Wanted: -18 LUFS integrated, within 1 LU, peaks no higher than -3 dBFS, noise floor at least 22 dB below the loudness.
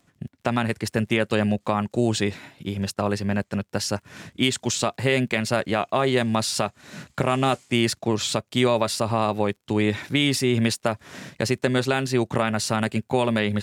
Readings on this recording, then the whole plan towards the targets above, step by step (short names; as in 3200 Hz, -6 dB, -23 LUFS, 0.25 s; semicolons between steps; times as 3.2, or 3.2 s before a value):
ticks 25/s; loudness -24.0 LUFS; peak -7.0 dBFS; loudness target -18.0 LUFS
-> de-click; gain +6 dB; limiter -3 dBFS